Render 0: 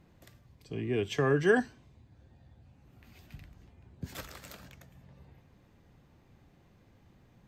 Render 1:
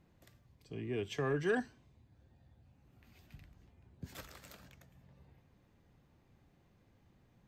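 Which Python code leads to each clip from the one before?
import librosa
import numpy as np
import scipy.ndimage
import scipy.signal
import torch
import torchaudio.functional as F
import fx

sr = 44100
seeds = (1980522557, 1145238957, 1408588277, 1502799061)

y = 10.0 ** (-17.0 / 20.0) * np.tanh(x / 10.0 ** (-17.0 / 20.0))
y = y * 10.0 ** (-6.5 / 20.0)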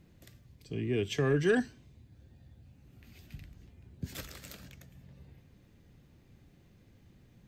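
y = fx.peak_eq(x, sr, hz=930.0, db=-9.0, octaves=1.5)
y = y * 10.0 ** (8.5 / 20.0)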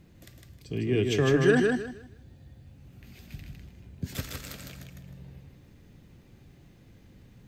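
y = fx.echo_feedback(x, sr, ms=156, feedback_pct=25, wet_db=-3.5)
y = y * 10.0 ** (4.5 / 20.0)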